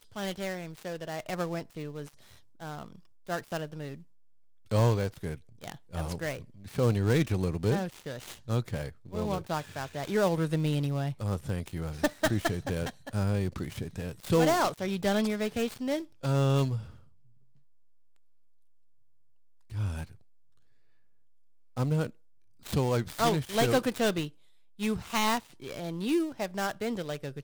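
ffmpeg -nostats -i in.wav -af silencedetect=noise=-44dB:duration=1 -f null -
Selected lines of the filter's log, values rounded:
silence_start: 16.97
silence_end: 19.70 | silence_duration: 2.74
silence_start: 20.14
silence_end: 21.77 | silence_duration: 1.62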